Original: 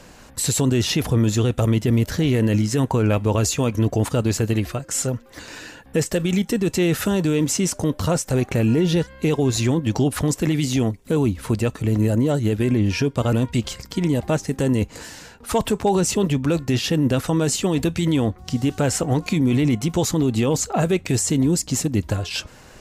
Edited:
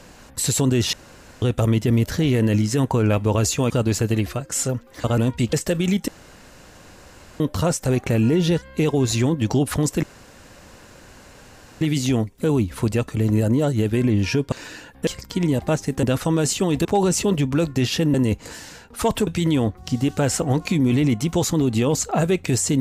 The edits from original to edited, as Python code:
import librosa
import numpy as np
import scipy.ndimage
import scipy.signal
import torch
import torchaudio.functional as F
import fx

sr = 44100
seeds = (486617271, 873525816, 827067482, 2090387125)

y = fx.edit(x, sr, fx.room_tone_fill(start_s=0.93, length_s=0.49),
    fx.cut(start_s=3.7, length_s=0.39),
    fx.swap(start_s=5.43, length_s=0.55, other_s=13.19, other_length_s=0.49),
    fx.room_tone_fill(start_s=6.53, length_s=1.32),
    fx.insert_room_tone(at_s=10.48, length_s=1.78),
    fx.swap(start_s=14.64, length_s=1.13, other_s=17.06, other_length_s=0.82), tone=tone)